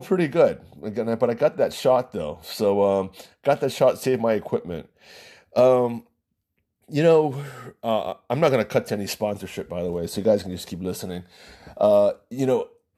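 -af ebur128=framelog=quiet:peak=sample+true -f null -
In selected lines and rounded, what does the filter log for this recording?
Integrated loudness:
  I:         -22.8 LUFS
  Threshold: -33.4 LUFS
Loudness range:
  LRA:         2.6 LU
  Threshold: -43.8 LUFS
  LRA low:   -25.2 LUFS
  LRA high:  -22.6 LUFS
Sample peak:
  Peak:       -6.7 dBFS
True peak:
  Peak:       -6.7 dBFS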